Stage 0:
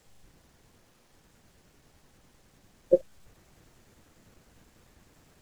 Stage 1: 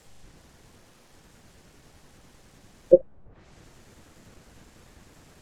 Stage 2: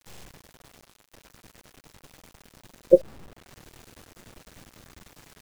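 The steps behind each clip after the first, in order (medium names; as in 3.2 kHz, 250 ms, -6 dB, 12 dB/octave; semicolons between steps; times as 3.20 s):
low-pass that closes with the level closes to 790 Hz, closed at -34.5 dBFS; trim +7 dB
bit crusher 8-bit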